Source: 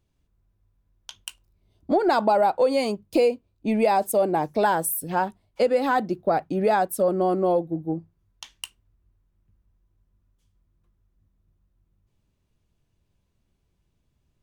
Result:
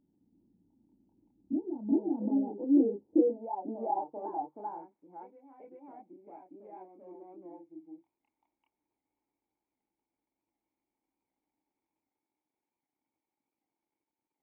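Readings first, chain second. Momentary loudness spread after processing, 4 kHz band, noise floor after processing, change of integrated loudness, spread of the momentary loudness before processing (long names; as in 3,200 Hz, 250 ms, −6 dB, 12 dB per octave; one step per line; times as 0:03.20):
24 LU, below −40 dB, below −85 dBFS, −8.5 dB, 18 LU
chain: adaptive Wiener filter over 25 samples
in parallel at −2 dB: downward compressor, threshold −32 dBFS, peak gain reduction 14.5 dB
on the sum: multi-voice chorus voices 6, 0.49 Hz, delay 28 ms, depth 2 ms
surface crackle 430 per second −43 dBFS
bit reduction 10 bits
formant resonators in series u
band-pass filter sweep 210 Hz → 2,600 Hz, 0:02.20–0:05.58
on a send: backwards echo 388 ms −5 dB
on the sum: wow of a warped record 78 rpm, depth 100 cents
level +7.5 dB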